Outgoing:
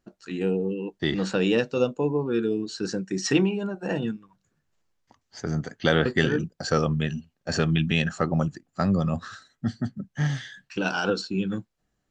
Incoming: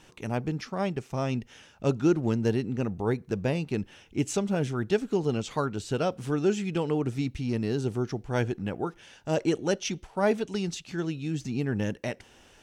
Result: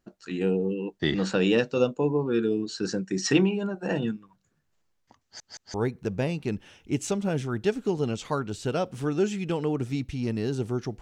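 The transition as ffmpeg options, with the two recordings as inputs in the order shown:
ffmpeg -i cue0.wav -i cue1.wav -filter_complex "[0:a]apad=whole_dur=11.01,atrim=end=11.01,asplit=3[link_01][link_02][link_03];[link_01]atrim=end=5.402[link_04];[link_02]atrim=start=5.228:end=5.402[link_05];[link_03]atrim=start=5.228:end=5.402[link_06];[1:a]atrim=start=2.998:end=8.27[link_07];[link_04][link_05]acrossfade=duration=0.004:curve1=hsin:curve2=hsin[link_08];[link_08][link_06]acrossfade=duration=0.004:curve1=hsin:curve2=hsin[link_09];[link_09][link_07]acrossfade=duration=0.004:curve1=hsin:curve2=hsin" out.wav

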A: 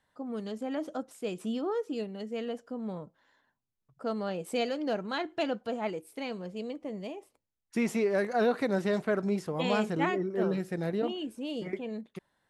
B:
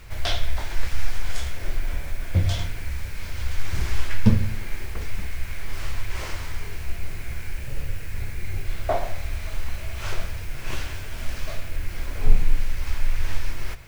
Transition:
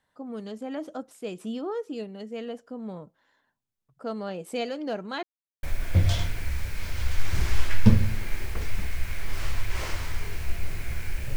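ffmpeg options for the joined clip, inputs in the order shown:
ffmpeg -i cue0.wav -i cue1.wav -filter_complex "[0:a]apad=whole_dur=11.36,atrim=end=11.36,asplit=2[link_01][link_02];[link_01]atrim=end=5.23,asetpts=PTS-STARTPTS,afade=type=out:start_time=5.226:duration=0.004:curve=hsin[link_03];[link_02]atrim=start=5.23:end=5.63,asetpts=PTS-STARTPTS,volume=0[link_04];[1:a]atrim=start=2.03:end=7.76,asetpts=PTS-STARTPTS,afade=type=in:duration=0.004:curve=hsin[link_05];[link_03][link_04][link_05]concat=n=3:v=0:a=1" out.wav

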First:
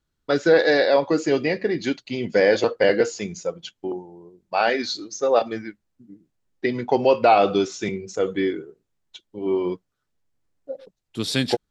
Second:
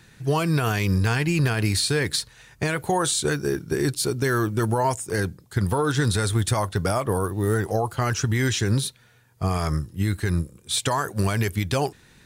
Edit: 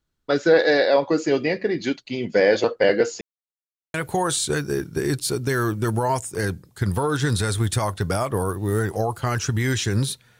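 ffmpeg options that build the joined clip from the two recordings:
ffmpeg -i cue0.wav -i cue1.wav -filter_complex "[0:a]apad=whole_dur=10.39,atrim=end=10.39,asplit=2[link_01][link_02];[link_01]atrim=end=3.21,asetpts=PTS-STARTPTS,afade=type=out:start_time=3.206:duration=0.004:curve=hsin[link_03];[link_02]atrim=start=3.21:end=3.94,asetpts=PTS-STARTPTS,volume=0[link_04];[1:a]atrim=start=2.69:end=9.14,asetpts=PTS-STARTPTS,afade=type=in:duration=0.004:curve=hsin[link_05];[link_03][link_04][link_05]concat=n=3:v=0:a=1" out.wav

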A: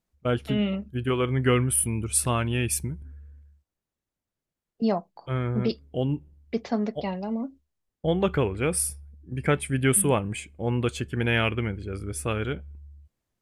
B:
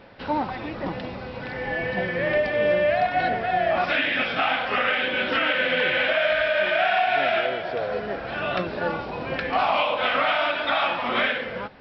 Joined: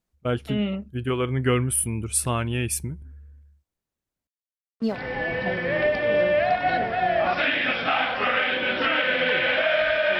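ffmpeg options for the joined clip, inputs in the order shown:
ffmpeg -i cue0.wav -i cue1.wav -filter_complex "[0:a]asettb=1/sr,asplit=3[link_01][link_02][link_03];[link_01]atrim=end=4.274[link_04];[link_02]atrim=start=4.27:end=4.99,asetpts=PTS-STARTPTS,afade=type=in:duration=0.004:curve=qsin,afade=type=out:start_time=0.716:duration=0.004:curve=qsin,aeval=exprs='sgn(val(0))*max(abs(val(0))-0.00708,0)':channel_layout=same[link_05];[link_03]atrim=start=4.986[link_06];[link_04][link_05]acrossfade=duration=0.004:curve1=hsin:curve2=qsin[link_07];[link_07][link_06]acrossfade=duration=0.004:curve1=qsin:curve2=hsin,apad=whole_dur=10.19,atrim=end=10.19,atrim=end=4.99,asetpts=PTS-STARTPTS[link_08];[1:a]atrim=start=1.38:end=6.7,asetpts=PTS-STARTPTS[link_09];[link_08][link_09]acrossfade=duration=0.12:curve1=tri:curve2=tri" out.wav

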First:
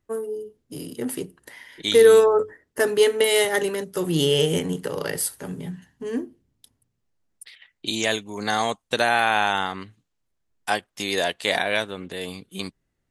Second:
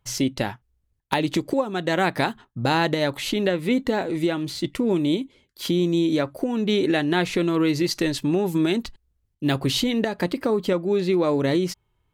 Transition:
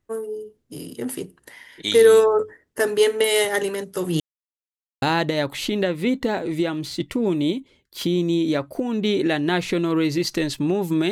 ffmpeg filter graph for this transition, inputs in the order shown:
ffmpeg -i cue0.wav -i cue1.wav -filter_complex "[0:a]apad=whole_dur=11.11,atrim=end=11.11,asplit=2[link_01][link_02];[link_01]atrim=end=4.2,asetpts=PTS-STARTPTS,afade=type=out:start_time=4.196:duration=0.004:curve=hsin[link_03];[link_02]atrim=start=4.2:end=5.02,asetpts=PTS-STARTPTS,volume=0[link_04];[1:a]atrim=start=2.66:end=8.75,asetpts=PTS-STARTPTS,afade=type=in:duration=0.004:curve=hsin[link_05];[link_03][link_04][link_05]concat=n=3:v=0:a=1" out.wav

